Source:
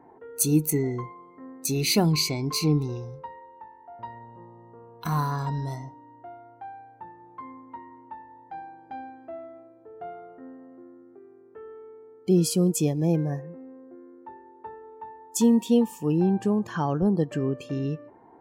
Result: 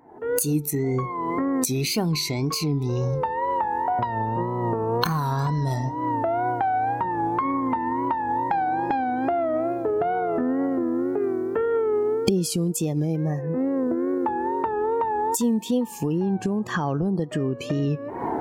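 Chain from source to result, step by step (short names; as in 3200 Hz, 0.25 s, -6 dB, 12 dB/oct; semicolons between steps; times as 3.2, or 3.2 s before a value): recorder AGC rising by 70 dB/s; wow and flutter 86 cents; gain -3 dB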